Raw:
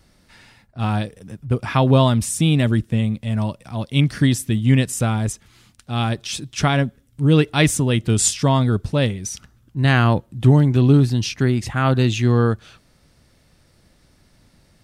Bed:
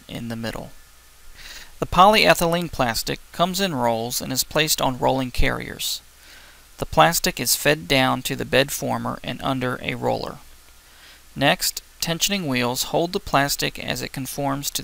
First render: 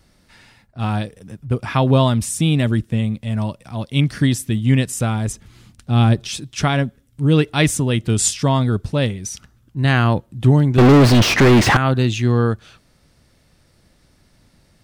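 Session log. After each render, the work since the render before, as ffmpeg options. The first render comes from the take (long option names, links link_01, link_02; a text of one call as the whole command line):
ffmpeg -i in.wav -filter_complex "[0:a]asettb=1/sr,asplit=3[link_01][link_02][link_03];[link_01]atrim=end=5.304[link_04];[link_02]atrim=start=5.3:end=6.29,asetpts=PTS-STARTPTS,afade=type=in:duration=0.004:curve=qsin,afade=type=out:start_time=0.986:duration=0.004:curve=qsin,lowshelf=frequency=470:gain=9.5[link_05];[link_03]atrim=start=6.286[link_06];[link_04][link_05]acrossfade=duration=0.004:curve1=hsin:curve2=qsin[link_07];[link_07][link_06]acrossfade=duration=0.004:curve1=qsin:curve2=hsin,asettb=1/sr,asplit=3[link_08][link_09][link_10];[link_08]atrim=end=10.784[link_11];[link_09]atrim=start=10.78:end=11.77,asetpts=PTS-STARTPTS,afade=type=in:duration=0.004:curve=qsin,afade=type=out:start_time=0.986:duration=0.004:curve=qsin,asplit=2[link_12][link_13];[link_13]highpass=frequency=720:poles=1,volume=43dB,asoftclip=type=tanh:threshold=-3dB[link_14];[link_12][link_14]amix=inputs=2:normalize=0,lowpass=frequency=1500:poles=1,volume=-6dB[link_15];[link_10]atrim=start=11.766[link_16];[link_11][link_15]acrossfade=duration=0.004:curve1=hsin:curve2=qsin[link_17];[link_17][link_16]acrossfade=duration=0.004:curve1=qsin:curve2=hsin" out.wav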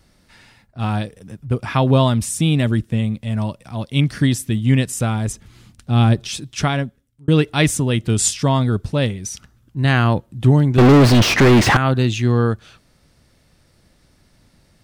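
ffmpeg -i in.wav -filter_complex "[0:a]asplit=2[link_01][link_02];[link_01]atrim=end=7.28,asetpts=PTS-STARTPTS,afade=type=out:start_time=6.6:duration=0.68[link_03];[link_02]atrim=start=7.28,asetpts=PTS-STARTPTS,afade=type=in:duration=0.004:curve=hsin[link_04];[link_03][link_04]concat=n=2:v=0:a=1" out.wav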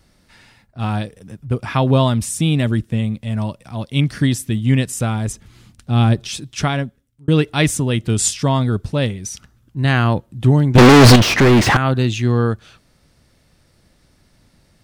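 ffmpeg -i in.wav -filter_complex "[0:a]asettb=1/sr,asplit=3[link_01][link_02][link_03];[link_01]atrim=end=10.754[link_04];[link_02]atrim=start=10.75:end=11.16,asetpts=PTS-STARTPTS,afade=type=in:duration=0.004:curve=qsin,afade=type=out:start_time=0.406:duration=0.004:curve=qsin,aeval=exprs='0.708*sin(PI/2*2.51*val(0)/0.708)':channel_layout=same[link_05];[link_03]atrim=start=11.156[link_06];[link_04][link_05]acrossfade=duration=0.004:curve1=hsin:curve2=qsin[link_07];[link_07][link_06]acrossfade=duration=0.004:curve1=qsin:curve2=hsin" out.wav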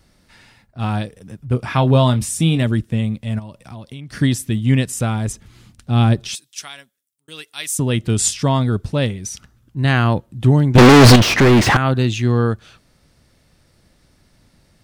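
ffmpeg -i in.wav -filter_complex "[0:a]asettb=1/sr,asplit=3[link_01][link_02][link_03];[link_01]atrim=end=1.494[link_04];[link_02]atrim=start=1.49:end=2.63,asetpts=PTS-STARTPTS,afade=type=in:duration=0.004:curve=qsin,afade=type=out:start_time=1.136:duration=0.004:curve=qsin,asplit=2[link_05][link_06];[link_06]adelay=24,volume=-9.5dB[link_07];[link_05][link_07]amix=inputs=2:normalize=0,atrim=end_sample=50274[link_08];[link_03]atrim=start=2.626[link_09];[link_04][link_08]acrossfade=duration=0.004:curve1=hsin:curve2=qsin[link_10];[link_10][link_09]acrossfade=duration=0.004:curve1=qsin:curve2=hsin,asplit=3[link_11][link_12][link_13];[link_11]afade=type=out:start_time=3.38:duration=0.02[link_14];[link_12]acompressor=threshold=-29dB:ratio=16:attack=3.2:release=140:knee=1:detection=peak,afade=type=in:start_time=3.38:duration=0.02,afade=type=out:start_time=4.12:duration=0.02[link_15];[link_13]afade=type=in:start_time=4.12:duration=0.02[link_16];[link_14][link_15][link_16]amix=inputs=3:normalize=0,asettb=1/sr,asplit=3[link_17][link_18][link_19];[link_17]atrim=end=6.354[link_20];[link_18]atrim=start=6.35:end=7.79,asetpts=PTS-STARTPTS,afade=type=in:duration=0.004:curve=qsin,afade=type=out:start_time=1.436:duration=0.004:curve=qsin,aderivative[link_21];[link_19]atrim=start=7.786[link_22];[link_20][link_21]acrossfade=duration=0.004:curve1=hsin:curve2=qsin[link_23];[link_23][link_22]acrossfade=duration=0.004:curve1=qsin:curve2=hsin" out.wav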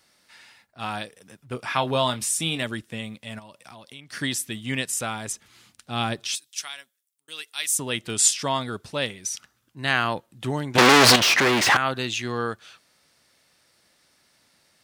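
ffmpeg -i in.wav -af "highpass=frequency=1100:poles=1" out.wav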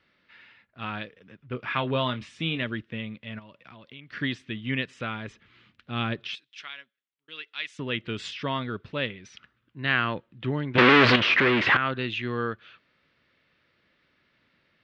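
ffmpeg -i in.wav -af "lowpass=frequency=3100:width=0.5412,lowpass=frequency=3100:width=1.3066,equalizer=frequency=780:width=2.1:gain=-10" out.wav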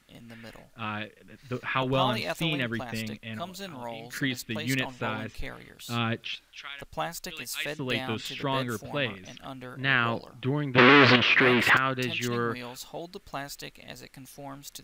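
ffmpeg -i in.wav -i bed.wav -filter_complex "[1:a]volume=-17.5dB[link_01];[0:a][link_01]amix=inputs=2:normalize=0" out.wav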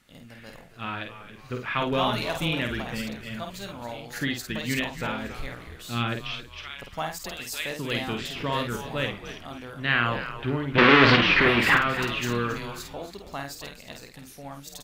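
ffmpeg -i in.wav -filter_complex "[0:a]asplit=2[link_01][link_02];[link_02]adelay=50,volume=-5.5dB[link_03];[link_01][link_03]amix=inputs=2:normalize=0,asplit=2[link_04][link_05];[link_05]asplit=4[link_06][link_07][link_08][link_09];[link_06]adelay=273,afreqshift=-100,volume=-12dB[link_10];[link_07]adelay=546,afreqshift=-200,volume=-20.2dB[link_11];[link_08]adelay=819,afreqshift=-300,volume=-28.4dB[link_12];[link_09]adelay=1092,afreqshift=-400,volume=-36.5dB[link_13];[link_10][link_11][link_12][link_13]amix=inputs=4:normalize=0[link_14];[link_04][link_14]amix=inputs=2:normalize=0" out.wav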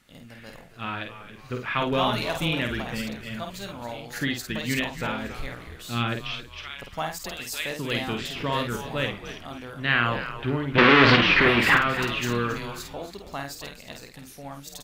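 ffmpeg -i in.wav -af "volume=1dB,alimiter=limit=-3dB:level=0:latency=1" out.wav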